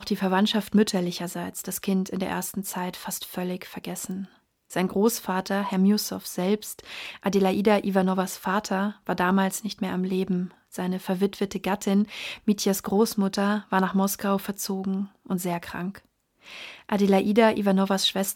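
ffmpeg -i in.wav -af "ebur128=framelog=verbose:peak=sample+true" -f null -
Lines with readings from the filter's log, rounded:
Integrated loudness:
  I:         -25.6 LUFS
  Threshold: -35.9 LUFS
Loudness range:
  LRA:         4.5 LU
  Threshold: -46.4 LUFS
  LRA low:   -29.4 LUFS
  LRA high:  -24.8 LUFS
Sample peak:
  Peak:       -6.9 dBFS
True peak:
  Peak:       -6.9 dBFS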